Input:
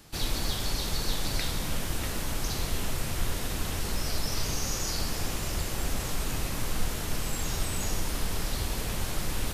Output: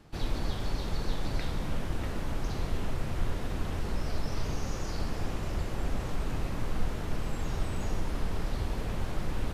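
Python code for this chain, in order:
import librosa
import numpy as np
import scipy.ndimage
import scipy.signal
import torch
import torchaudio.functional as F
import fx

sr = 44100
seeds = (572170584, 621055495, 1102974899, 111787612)

y = fx.dmg_crackle(x, sr, seeds[0], per_s=270.0, level_db=-43.0, at=(2.44, 3.5), fade=0.02)
y = fx.lowpass(y, sr, hz=1200.0, slope=6)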